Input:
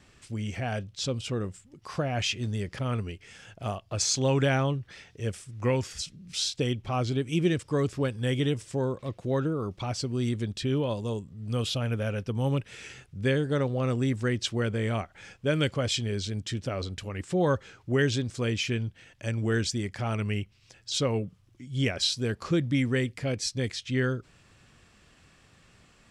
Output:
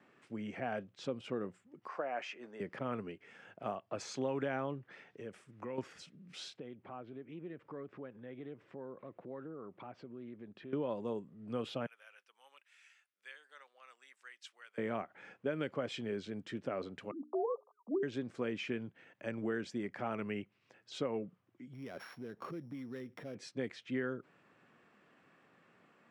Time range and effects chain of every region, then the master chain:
0:01.88–0:02.60: band-pass filter 500–7,200 Hz + parametric band 3,600 Hz −8 dB 0.71 octaves
0:04.94–0:05.78: downward compressor 8 to 1, threshold −33 dBFS + one half of a high-frequency compander encoder only
0:06.57–0:10.73: low-pass filter 2,800 Hz + downward compressor 4 to 1, threshold −40 dBFS + highs frequency-modulated by the lows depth 0.12 ms
0:11.86–0:14.78: high-pass filter 940 Hz + first difference
0:17.11–0:18.03: three sine waves on the formant tracks + Chebyshev low-pass filter 1,200 Hz, order 8 + mains-hum notches 60/120/180/240/300/360/420 Hz
0:21.73–0:23.35: samples sorted by size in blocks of 8 samples + low-shelf EQ 110 Hz +7.5 dB + downward compressor 16 to 1, threshold −33 dBFS
whole clip: high-pass filter 130 Hz 12 dB per octave; three-way crossover with the lows and the highs turned down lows −19 dB, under 170 Hz, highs −20 dB, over 2,300 Hz; downward compressor, threshold −29 dBFS; level −3 dB

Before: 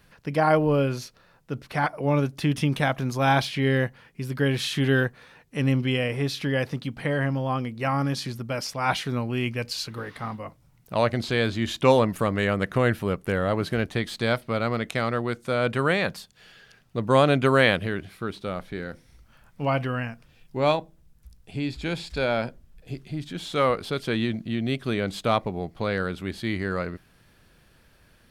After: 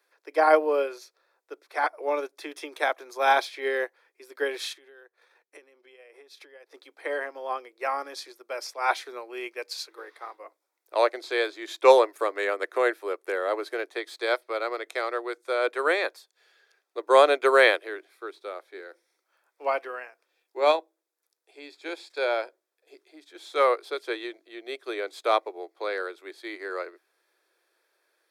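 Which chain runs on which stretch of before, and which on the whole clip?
0:04.72–0:06.74: downward compressor 12 to 1, threshold −35 dBFS + transient designer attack +6 dB, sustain −10 dB
whole clip: Butterworth high-pass 330 Hz 72 dB per octave; notch filter 2,900 Hz, Q 5.4; expander for the loud parts 1.5 to 1, over −43 dBFS; level +4 dB

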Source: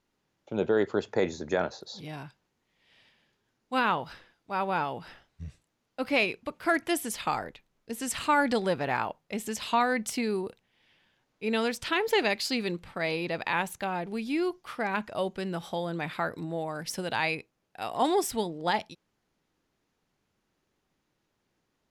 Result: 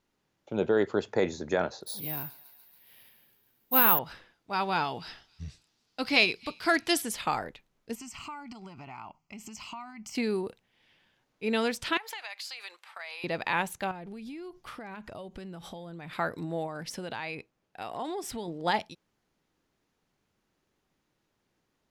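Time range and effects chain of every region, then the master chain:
0:01.86–0:03.99: bad sample-rate conversion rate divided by 3×, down none, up zero stuff + feedback echo with a high-pass in the loop 140 ms, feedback 74%, high-pass 720 Hz, level −18 dB
0:04.53–0:07.02: parametric band 4,700 Hz +12 dB 1.1 octaves + notch filter 550 Hz, Q 6.7 + delay with a high-pass on its return 279 ms, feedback 36%, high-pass 3,000 Hz, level −22 dB
0:07.95–0:10.15: downward compressor 8 to 1, threshold −36 dBFS + phaser with its sweep stopped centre 2,500 Hz, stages 8
0:11.97–0:13.24: high-pass filter 800 Hz 24 dB per octave + downward compressor 5 to 1, threshold −37 dBFS
0:13.91–0:16.13: low-shelf EQ 140 Hz +11 dB + downward compressor 16 to 1, threshold −38 dBFS
0:16.66–0:18.48: high-shelf EQ 7,100 Hz −7.5 dB + downward compressor 4 to 1, threshold −33 dBFS
whole clip: no processing

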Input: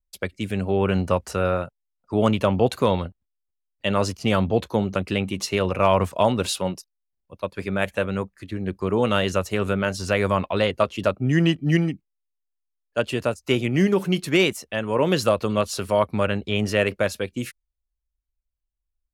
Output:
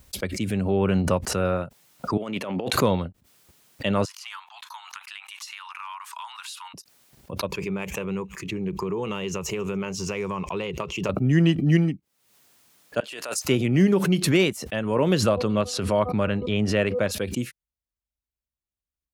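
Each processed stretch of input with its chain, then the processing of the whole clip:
0:02.17–0:02.73: parametric band 2,100 Hz +5.5 dB 0.8 octaves + compressor whose output falls as the input rises −24 dBFS, ratio −0.5 + high-pass filter 260 Hz
0:04.05–0:06.74: Butterworth high-pass 900 Hz 72 dB per octave + downward compressor 4 to 1, threshold −32 dBFS
0:07.48–0:11.09: EQ curve with evenly spaced ripples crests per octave 0.75, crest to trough 11 dB + downward compressor 4 to 1, threshold −24 dBFS + delay with a high-pass on its return 141 ms, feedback 42%, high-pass 4,800 Hz, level −23 dB
0:13.00–0:13.45: Bessel high-pass filter 960 Hz + compressor whose output falls as the input rises −37 dBFS
0:15.21–0:17.11: high-frequency loss of the air 50 metres + hum removal 247.2 Hz, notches 5
whole clip: high-pass filter 130 Hz 12 dB per octave; low-shelf EQ 200 Hz +10.5 dB; background raised ahead of every attack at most 61 dB per second; level −3.5 dB

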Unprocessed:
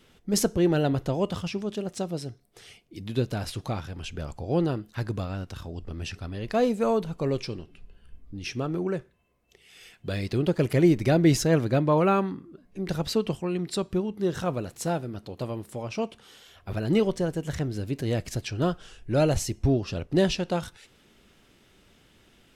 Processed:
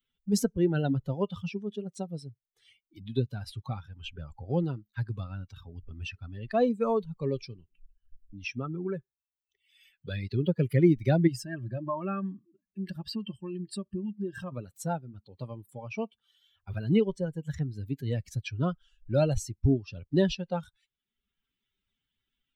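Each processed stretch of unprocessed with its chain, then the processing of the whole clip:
0:11.27–0:14.52: EQ curve with evenly spaced ripples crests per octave 1.3, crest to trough 8 dB + downward compressor 2 to 1, threshold −29 dBFS + notch comb filter 490 Hz
whole clip: spectral dynamics exaggerated over time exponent 2; low-shelf EQ 420 Hz +4.5 dB; multiband upward and downward compressor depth 40%; level +1 dB

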